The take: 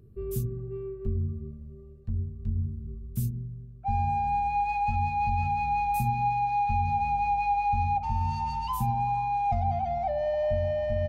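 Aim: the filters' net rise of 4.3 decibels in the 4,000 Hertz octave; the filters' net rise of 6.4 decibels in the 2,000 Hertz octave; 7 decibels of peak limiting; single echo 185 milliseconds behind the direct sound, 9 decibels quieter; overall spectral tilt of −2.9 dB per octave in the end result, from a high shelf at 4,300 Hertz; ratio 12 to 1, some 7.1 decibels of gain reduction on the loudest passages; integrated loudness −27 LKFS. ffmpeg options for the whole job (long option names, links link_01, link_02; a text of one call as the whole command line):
ffmpeg -i in.wav -af "equalizer=frequency=2000:width_type=o:gain=8,equalizer=frequency=4000:width_type=o:gain=6.5,highshelf=frequency=4300:gain=-7,acompressor=threshold=-29dB:ratio=12,alimiter=level_in=4.5dB:limit=-24dB:level=0:latency=1,volume=-4.5dB,aecho=1:1:185:0.355,volume=8.5dB" out.wav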